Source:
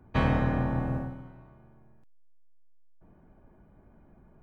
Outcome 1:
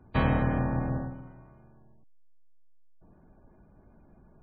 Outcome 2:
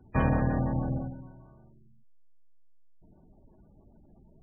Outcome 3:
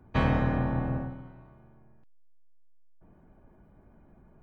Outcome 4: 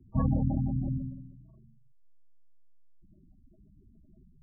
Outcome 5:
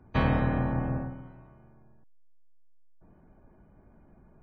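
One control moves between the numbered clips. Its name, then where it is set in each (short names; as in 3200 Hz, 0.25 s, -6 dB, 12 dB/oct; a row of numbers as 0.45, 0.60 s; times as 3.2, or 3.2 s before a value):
spectral gate, under each frame's peak: -35, -20, -60, -10, -45 dB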